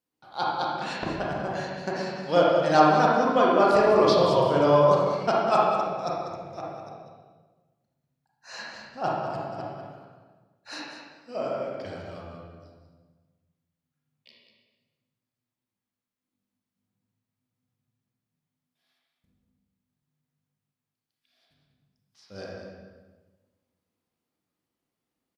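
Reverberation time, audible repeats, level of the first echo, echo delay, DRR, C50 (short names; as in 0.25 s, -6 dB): 1.3 s, 1, -8.5 dB, 0.195 s, -5.0 dB, -2.0 dB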